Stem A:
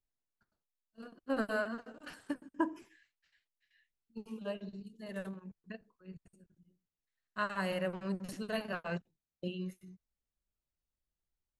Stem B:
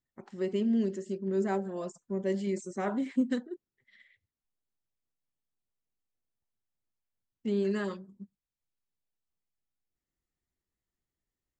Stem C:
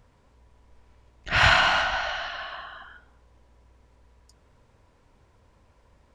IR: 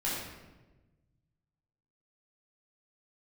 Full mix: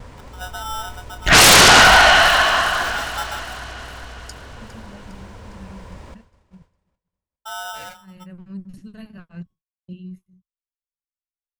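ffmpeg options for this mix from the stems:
-filter_complex "[0:a]asubboost=boost=11.5:cutoff=160,adelay=450,volume=-8dB[link_01];[1:a]aeval=exprs='val(0)*sgn(sin(2*PI*1100*n/s))':channel_layout=same,volume=-2.5dB,asplit=2[link_02][link_03];[2:a]aeval=exprs='0.501*sin(PI/2*6.31*val(0)/0.501)':channel_layout=same,volume=0.5dB,asplit=2[link_04][link_05];[link_05]volume=-13.5dB[link_06];[link_03]apad=whole_len=531306[link_07];[link_01][link_07]sidechaincompress=threshold=-48dB:ratio=8:attack=33:release=390[link_08];[link_06]aecho=0:1:407|814|1221|1628|2035|2442|2849|3256|3663:1|0.57|0.325|0.185|0.106|0.0602|0.0343|0.0195|0.0111[link_09];[link_08][link_02][link_04][link_09]amix=inputs=4:normalize=0,agate=range=-33dB:threshold=-41dB:ratio=3:detection=peak"

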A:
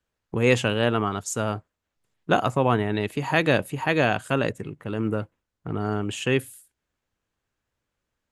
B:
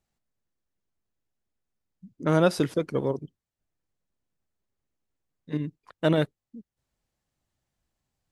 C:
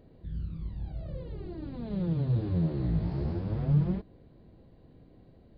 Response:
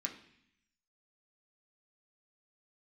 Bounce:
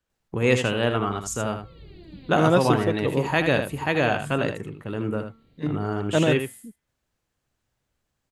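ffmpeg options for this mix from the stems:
-filter_complex "[0:a]bandreject=frequency=225.3:width_type=h:width=4,bandreject=frequency=450.6:width_type=h:width=4,bandreject=frequency=675.9:width_type=h:width=4,bandreject=frequency=901.2:width_type=h:width=4,bandreject=frequency=1126.5:width_type=h:width=4,bandreject=frequency=1351.8:width_type=h:width=4,bandreject=frequency=1577.1:width_type=h:width=4,bandreject=frequency=1802.4:width_type=h:width=4,bandreject=frequency=2027.7:width_type=h:width=4,bandreject=frequency=2253:width_type=h:width=4,bandreject=frequency=2478.3:width_type=h:width=4,bandreject=frequency=2703.6:width_type=h:width=4,bandreject=frequency=2928.9:width_type=h:width=4,bandreject=frequency=3154.2:width_type=h:width=4,bandreject=frequency=3379.5:width_type=h:width=4,volume=-1dB,asplit=3[link_01][link_02][link_03];[link_02]volume=-8dB[link_04];[1:a]adelay=100,volume=1.5dB[link_05];[2:a]highshelf=frequency=1700:width_type=q:width=1.5:gain=11.5,adelay=500,volume=-6dB[link_06];[link_03]apad=whole_len=267971[link_07];[link_06][link_07]sidechaincompress=threshold=-33dB:ratio=8:attack=36:release=329[link_08];[link_04]aecho=0:1:79:1[link_09];[link_01][link_05][link_08][link_09]amix=inputs=4:normalize=0"

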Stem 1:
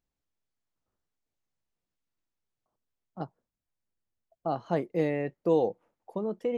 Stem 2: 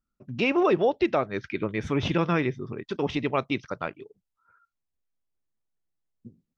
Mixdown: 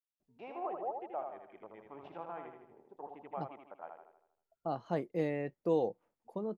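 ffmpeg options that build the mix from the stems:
ffmpeg -i stem1.wav -i stem2.wav -filter_complex "[0:a]adelay=200,volume=-6dB[link_01];[1:a]afwtdn=0.0158,bandpass=frequency=780:width_type=q:width=4.5:csg=0,volume=-8dB,asplit=2[link_02][link_03];[link_03]volume=-5dB,aecho=0:1:79|158|237|316|395|474|553:1|0.49|0.24|0.118|0.0576|0.0282|0.0138[link_04];[link_01][link_02][link_04]amix=inputs=3:normalize=0" out.wav

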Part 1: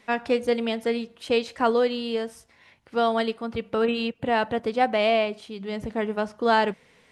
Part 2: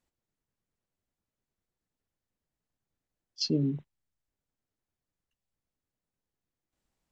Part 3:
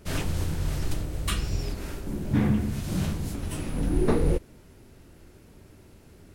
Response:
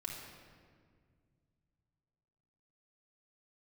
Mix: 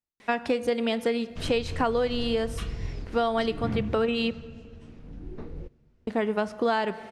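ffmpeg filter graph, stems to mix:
-filter_complex "[0:a]adelay=200,volume=3dB,asplit=3[link_01][link_02][link_03];[link_01]atrim=end=4.32,asetpts=PTS-STARTPTS,afade=type=out:start_time=4.316:duration=0.004:curve=hsin[link_04];[link_02]atrim=start=4.32:end=6.07,asetpts=PTS-STARTPTS,volume=0[link_05];[link_03]atrim=start=6.07,asetpts=PTS-STARTPTS,afade=type=in:duration=0.004:curve=hsin[link_06];[link_04][link_05][link_06]concat=n=3:v=0:a=1,asplit=2[link_07][link_08];[link_08]volume=-15.5dB[link_09];[1:a]volume=-14dB[link_10];[2:a]lowpass=frequency=6600:width=0.5412,lowpass=frequency=6600:width=1.3066,bass=frequency=250:gain=4,treble=frequency=4000:gain=-4,adelay=1300,volume=-9dB,afade=type=out:start_time=3.91:duration=0.39:silence=0.298538,asplit=2[link_11][link_12];[link_12]volume=-22.5dB[link_13];[3:a]atrim=start_sample=2205[link_14];[link_09][link_13]amix=inputs=2:normalize=0[link_15];[link_15][link_14]afir=irnorm=-1:irlink=0[link_16];[link_07][link_10][link_11][link_16]amix=inputs=4:normalize=0,acompressor=threshold=-22dB:ratio=5"

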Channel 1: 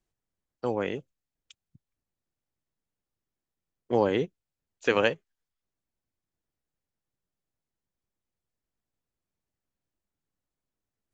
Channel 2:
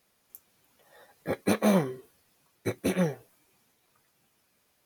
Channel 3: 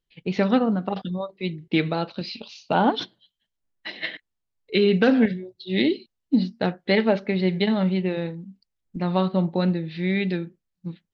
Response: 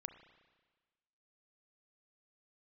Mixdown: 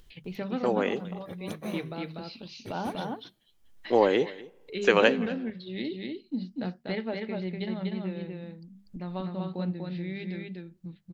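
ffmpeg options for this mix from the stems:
-filter_complex "[0:a]highpass=300,volume=1.5dB,asplit=3[link_01][link_02][link_03];[link_02]volume=-10dB[link_04];[link_03]volume=-19dB[link_05];[1:a]volume=-14.5dB[link_06];[2:a]bandreject=frequency=50:width_type=h:width=6,bandreject=frequency=100:width_type=h:width=6,bandreject=frequency=150:width_type=h:width=6,bandreject=frequency=200:width_type=h:width=6,acompressor=mode=upward:threshold=-23dB:ratio=2.5,volume=-14dB,asplit=2[link_07][link_08];[link_08]volume=-3dB[link_09];[3:a]atrim=start_sample=2205[link_10];[link_04][link_10]afir=irnorm=-1:irlink=0[link_11];[link_05][link_09]amix=inputs=2:normalize=0,aecho=0:1:244:1[link_12];[link_01][link_06][link_07][link_11][link_12]amix=inputs=5:normalize=0,lowshelf=frequency=110:gain=9"

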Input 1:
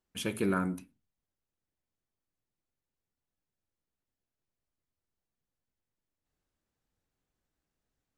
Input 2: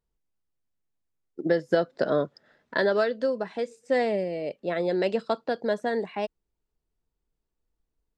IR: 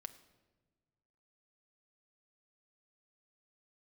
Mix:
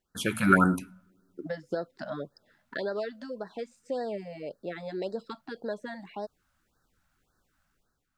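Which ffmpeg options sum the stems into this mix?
-filter_complex "[0:a]equalizer=frequency=1400:width_type=o:width=0.54:gain=12,volume=2dB,asplit=2[link_01][link_02];[link_02]volume=-12.5dB[link_03];[1:a]equalizer=frequency=83:width_type=o:width=0.35:gain=4,acompressor=threshold=-37dB:ratio=1.5,volume=-10dB[link_04];[2:a]atrim=start_sample=2205[link_05];[link_03][link_05]afir=irnorm=-1:irlink=0[link_06];[link_01][link_04][link_06]amix=inputs=3:normalize=0,dynaudnorm=framelen=100:gausssize=9:maxgain=7.5dB,afftfilt=real='re*(1-between(b*sr/1024,350*pow(2700/350,0.5+0.5*sin(2*PI*1.8*pts/sr))/1.41,350*pow(2700/350,0.5+0.5*sin(2*PI*1.8*pts/sr))*1.41))':imag='im*(1-between(b*sr/1024,350*pow(2700/350,0.5+0.5*sin(2*PI*1.8*pts/sr))/1.41,350*pow(2700/350,0.5+0.5*sin(2*PI*1.8*pts/sr))*1.41))':win_size=1024:overlap=0.75"

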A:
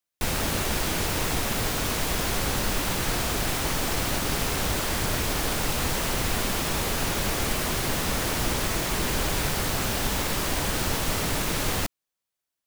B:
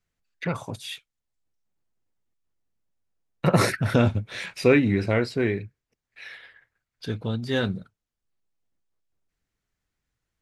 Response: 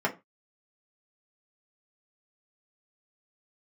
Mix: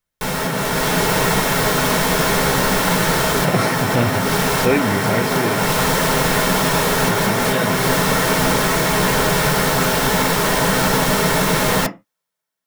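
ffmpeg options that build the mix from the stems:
-filter_complex "[0:a]volume=-0.5dB,asplit=2[link_01][link_02];[link_02]volume=-6dB[link_03];[1:a]volume=-4.5dB,asplit=2[link_04][link_05];[link_05]apad=whole_len=558475[link_06];[link_01][link_06]sidechaincompress=threshold=-33dB:ratio=8:attack=16:release=246[link_07];[2:a]atrim=start_sample=2205[link_08];[link_03][link_08]afir=irnorm=-1:irlink=0[link_09];[link_07][link_04][link_09]amix=inputs=3:normalize=0,dynaudnorm=framelen=110:gausssize=13:maxgain=6dB"

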